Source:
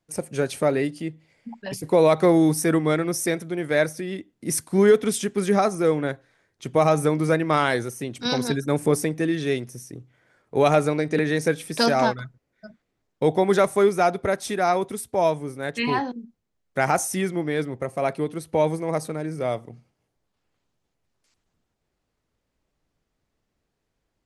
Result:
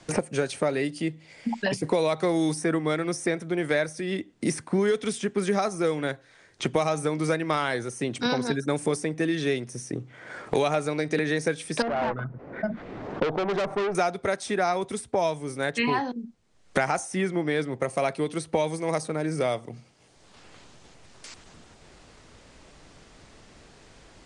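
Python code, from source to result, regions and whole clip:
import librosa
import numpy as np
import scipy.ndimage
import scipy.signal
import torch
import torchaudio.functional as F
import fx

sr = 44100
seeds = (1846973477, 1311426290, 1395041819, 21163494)

y = fx.chain(x, sr, fx.lowpass(hz=1100.0, slope=12),
    fx.tube_stage(drive_db=25.0, bias=0.75),
    fx.env_flatten(amount_pct=50), at=(11.82, 13.95))
y = scipy.signal.sosfilt(scipy.signal.ellip(4, 1.0, 40, 9400.0, 'lowpass', fs=sr, output='sos'), y)
y = fx.low_shelf(y, sr, hz=470.0, db=-3.5)
y = fx.band_squash(y, sr, depth_pct=100)
y = y * 10.0 ** (-1.5 / 20.0)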